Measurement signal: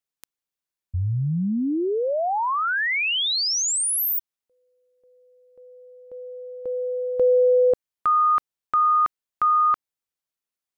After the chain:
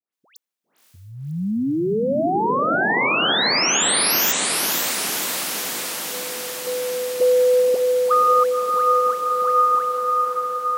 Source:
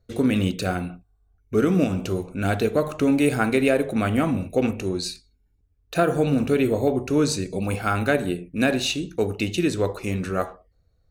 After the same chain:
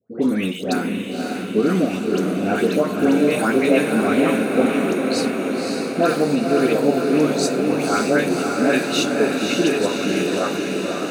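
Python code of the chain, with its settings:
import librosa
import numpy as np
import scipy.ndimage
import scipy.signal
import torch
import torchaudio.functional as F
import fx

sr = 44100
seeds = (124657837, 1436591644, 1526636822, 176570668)

p1 = scipy.signal.sosfilt(scipy.signal.butter(4, 180.0, 'highpass', fs=sr, output='sos'), x)
p2 = fx.dispersion(p1, sr, late='highs', ms=130.0, hz=1500.0)
p3 = p2 + fx.echo_diffused(p2, sr, ms=546, feedback_pct=74, wet_db=-3.5, dry=0)
y = F.gain(torch.from_numpy(p3), 2.0).numpy()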